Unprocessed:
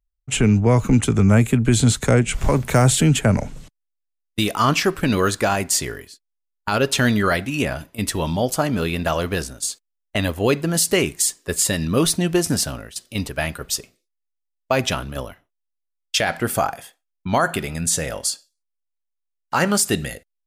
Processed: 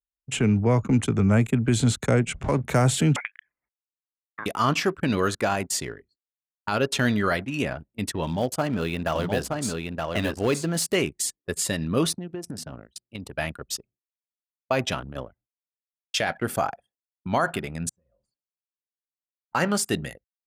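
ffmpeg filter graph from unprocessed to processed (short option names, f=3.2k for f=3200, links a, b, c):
-filter_complex "[0:a]asettb=1/sr,asplit=3[a][b][c];[a]atrim=end=3.164[d];[b]atrim=start=3.16:end=4.46,asetpts=PTS-STARTPTS,afade=t=in:d=0.004:c=qsin,afade=t=out:st=1.296:d=0.004:c=qsin,acompressor=threshold=-21dB:ratio=12:attack=3.2:release=140:knee=1:detection=peak,highpass=f=1.8k:t=q:w=3.6,lowpass=f=3.3k:t=q:w=0.5098,lowpass=f=3.3k:t=q:w=0.6013,lowpass=f=3.3k:t=q:w=0.9,lowpass=f=3.3k:t=q:w=2.563,afreqshift=-3900[e];[c]atrim=start=4.456[f];[d][e]acrossfade=d=0.004:c1=hsin:c2=qsin[g];[g][f]acrossfade=d=0.004:c1=qsin:c2=hsin,asettb=1/sr,asplit=3[h][i][j];[h]atrim=end=8.234[k];[i]atrim=start=8.23:end=10.95,asetpts=PTS-STARTPTS,afade=t=in:d=0.004:c=qsin,afade=t=out:st=2.716:d=0.004:c=qsin,acrusher=bits=5:mode=log:mix=0:aa=0.000001,volume=11.5dB,asoftclip=hard,volume=-11.5dB,aecho=1:1:922:0.668,atrim=end_sample=119952[l];[j]atrim=start=10.946[m];[k][l]acrossfade=d=0.004:c1=hsin:c2=qsin[n];[n][m]acrossfade=d=0.004:c1=qsin:c2=hsin,asettb=1/sr,asplit=3[o][p][q];[o]atrim=end=12.134[r];[p]atrim=start=12.13:end=13.32,asetpts=PTS-STARTPTS,afade=t=in:d=0.004:c=qsin,afade=t=out:st=1.186:d=0.004:c=qsin,highpass=59,bandreject=f=81.59:t=h:w=4,bandreject=f=163.18:t=h:w=4,bandreject=f=244.77:t=h:w=4,acompressor=threshold=-25dB:ratio=8:attack=3.2:release=140:knee=1:detection=peak[s];[q]atrim=start=13.316[t];[r][s]acrossfade=d=0.004:c1=hsin:c2=qsin[u];[u][t]acrossfade=d=0.004:c1=qsin:c2=hsin,asettb=1/sr,asplit=3[v][w][x];[v]atrim=end=17.894[y];[w]atrim=start=17.89:end=19.55,asetpts=PTS-STARTPTS,afade=t=in:d=0.004:c=qsin,afade=t=out:st=1.656:d=0.004:c=qsin,aeval=exprs='if(lt(val(0),0),0.708*val(0),val(0))':c=same,acompressor=threshold=-36dB:ratio=5:attack=3.2:release=140:knee=1:detection=peak,aeval=exprs='(tanh(56.2*val(0)+0.6)-tanh(0.6))/56.2':c=same[z];[x]atrim=start=19.546[aa];[y][z]acrossfade=d=0.004:c1=hsin:c2=qsin[ab];[ab][aa]acrossfade=d=0.004:c1=qsin:c2=hsin,anlmdn=39.8,highpass=82,highshelf=f=6.6k:g=-6,volume=-4.5dB"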